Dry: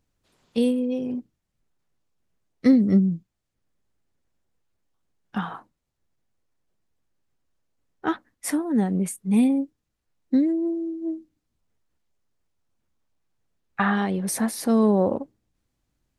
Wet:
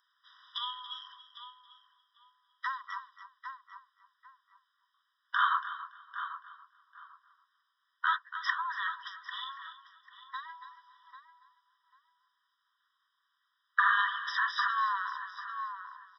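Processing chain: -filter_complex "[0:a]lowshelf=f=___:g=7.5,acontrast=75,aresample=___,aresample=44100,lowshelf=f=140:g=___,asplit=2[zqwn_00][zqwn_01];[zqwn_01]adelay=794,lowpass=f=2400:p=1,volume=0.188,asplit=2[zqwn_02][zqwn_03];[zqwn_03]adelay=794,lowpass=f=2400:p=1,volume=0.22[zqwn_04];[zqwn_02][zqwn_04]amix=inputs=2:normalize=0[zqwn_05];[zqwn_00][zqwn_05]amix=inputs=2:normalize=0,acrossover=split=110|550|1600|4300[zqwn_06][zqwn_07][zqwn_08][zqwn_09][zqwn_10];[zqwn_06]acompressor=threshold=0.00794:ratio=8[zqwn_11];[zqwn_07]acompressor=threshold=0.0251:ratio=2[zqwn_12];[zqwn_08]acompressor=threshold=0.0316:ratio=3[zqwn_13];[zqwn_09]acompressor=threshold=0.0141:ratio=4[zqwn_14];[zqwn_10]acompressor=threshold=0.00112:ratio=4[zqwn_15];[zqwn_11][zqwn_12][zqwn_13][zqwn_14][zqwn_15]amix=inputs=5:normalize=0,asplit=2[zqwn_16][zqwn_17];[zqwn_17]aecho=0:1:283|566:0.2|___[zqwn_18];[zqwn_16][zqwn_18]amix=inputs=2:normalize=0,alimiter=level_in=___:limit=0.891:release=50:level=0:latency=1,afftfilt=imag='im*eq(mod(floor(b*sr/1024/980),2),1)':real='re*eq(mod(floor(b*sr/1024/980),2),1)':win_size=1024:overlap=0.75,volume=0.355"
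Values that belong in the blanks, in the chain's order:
300, 11025, -11, 0.0379, 5.96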